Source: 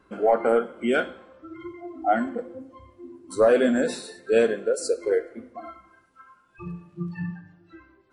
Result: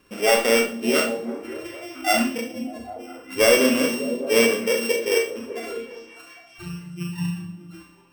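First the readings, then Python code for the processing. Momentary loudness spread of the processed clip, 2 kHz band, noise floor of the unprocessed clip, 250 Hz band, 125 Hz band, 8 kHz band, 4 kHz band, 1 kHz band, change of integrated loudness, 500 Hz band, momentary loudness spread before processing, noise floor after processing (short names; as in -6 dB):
19 LU, +7.5 dB, -61 dBFS, +3.5 dB, +4.0 dB, +12.0 dB, +14.5 dB, 0.0 dB, +3.0 dB, +1.5 dB, 21 LU, -51 dBFS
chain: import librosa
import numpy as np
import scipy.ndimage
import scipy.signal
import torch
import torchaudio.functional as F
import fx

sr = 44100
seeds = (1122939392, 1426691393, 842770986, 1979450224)

y = np.r_[np.sort(x[:len(x) // 16 * 16].reshape(-1, 16), axis=1).ravel(), x[len(x) // 16 * 16:]]
y = fx.echo_stepped(y, sr, ms=200, hz=160.0, octaves=0.7, feedback_pct=70, wet_db=-5.0)
y = fx.rev_schroeder(y, sr, rt60_s=0.31, comb_ms=27, drr_db=2.5)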